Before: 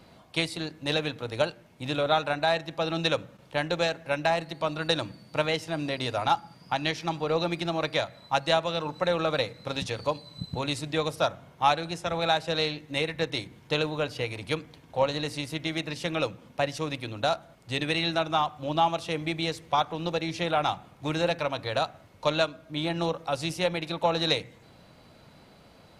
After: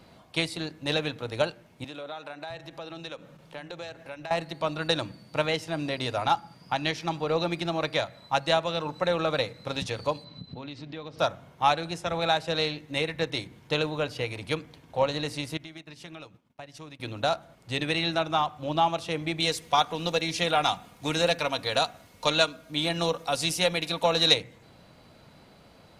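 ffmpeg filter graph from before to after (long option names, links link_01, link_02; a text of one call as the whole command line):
ffmpeg -i in.wav -filter_complex "[0:a]asettb=1/sr,asplit=3[link_01][link_02][link_03];[link_01]atrim=end=1.844[link_04];[link_02]atrim=start=1.84:end=4.31,asetpts=PTS-STARTPTS,afade=type=in:duration=0.004:curve=qsin,afade=type=out:start_time=2.466:duration=0.004:curve=qsin,acompressor=threshold=-39dB:ratio=3:attack=3.2:release=140:knee=1:detection=peak,acrossover=split=150[link_05][link_06];[link_05]adelay=660[link_07];[link_07][link_06]amix=inputs=2:normalize=0,atrim=end_sample=108927[link_08];[link_03]atrim=start=4.306[link_09];[link_04][link_08]acrossfade=duration=0.004:curve1=hsin:curve2=qsin[link_10];[link_10][link_09]acrossfade=duration=0.004:curve1=qsin:curve2=hsin,asettb=1/sr,asplit=3[link_11][link_12][link_13];[link_11]atrim=end=10.244[link_14];[link_12]atrim=start=10.24:end=11.19,asetpts=PTS-STARTPTS,afade=type=in:duration=0.004:curve=qsin,afade=type=out:start_time=0.946:duration=0.004:curve=qsin,lowpass=frequency=4800:width=0.5412,lowpass=frequency=4800:width=1.3066,equalizer=frequency=240:width=2.2:gain=7.5,acompressor=threshold=-39dB:ratio=3:attack=3.2:release=140:knee=1:detection=peak[link_15];[link_13]atrim=start=11.186[link_16];[link_14][link_15]acrossfade=duration=0.004:curve1=hsin:curve2=qsin[link_17];[link_17][link_16]acrossfade=duration=0.004:curve1=qsin:curve2=hsin,asettb=1/sr,asplit=3[link_18][link_19][link_20];[link_18]atrim=end=15.574[link_21];[link_19]atrim=start=15.57:end=17,asetpts=PTS-STARTPTS,afade=type=in:duration=0.004:curve=qsin,afade=type=out:start_time=1.426:duration=0.004:curve=qsin,bandreject=frequency=510:width=5.3,acompressor=threshold=-40dB:ratio=4:attack=3.2:release=140:knee=1:detection=peak,agate=range=-33dB:threshold=-41dB:ratio=3:release=100:detection=peak[link_22];[link_20]atrim=start=16.996[link_23];[link_21][link_22]acrossfade=duration=0.004:curve1=hsin:curve2=qsin[link_24];[link_24][link_23]acrossfade=duration=0.004:curve1=qsin:curve2=hsin,asettb=1/sr,asplit=3[link_25][link_26][link_27];[link_25]atrim=end=19.404[link_28];[link_26]atrim=start=19.4:end=24.34,asetpts=PTS-STARTPTS,afade=type=in:duration=0.004:curve=qsin,afade=type=out:start_time=4.936:duration=0.004:curve=qsin,highshelf=frequency=3500:gain=11,aecho=1:1:4.2:0.34,atrim=end_sample=217854[link_29];[link_27]atrim=start=24.336[link_30];[link_28][link_29]acrossfade=duration=0.004:curve1=hsin:curve2=qsin[link_31];[link_31][link_30]acrossfade=duration=0.004:curve1=qsin:curve2=hsin" out.wav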